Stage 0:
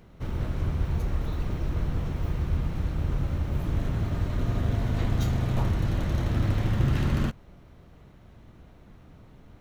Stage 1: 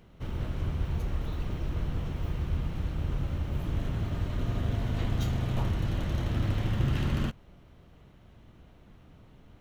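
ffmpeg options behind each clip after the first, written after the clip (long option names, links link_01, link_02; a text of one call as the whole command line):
ffmpeg -i in.wav -af "equalizer=frequency=3000:width=3.3:gain=5,volume=-3.5dB" out.wav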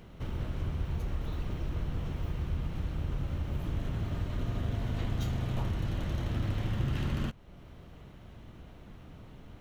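ffmpeg -i in.wav -af "acompressor=threshold=-48dB:ratio=1.5,volume=5dB" out.wav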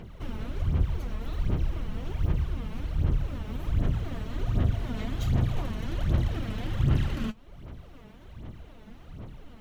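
ffmpeg -i in.wav -af "aphaser=in_gain=1:out_gain=1:delay=4.7:decay=0.65:speed=1.3:type=sinusoidal" out.wav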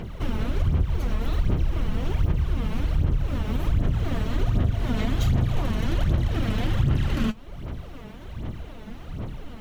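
ffmpeg -i in.wav -af "acompressor=threshold=-27dB:ratio=5,volume=9dB" out.wav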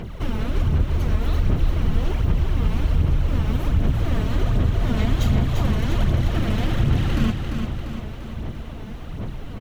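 ffmpeg -i in.wav -af "aecho=1:1:345|690|1035|1380|1725|2070|2415:0.501|0.276|0.152|0.0834|0.0459|0.0252|0.0139,volume=2dB" out.wav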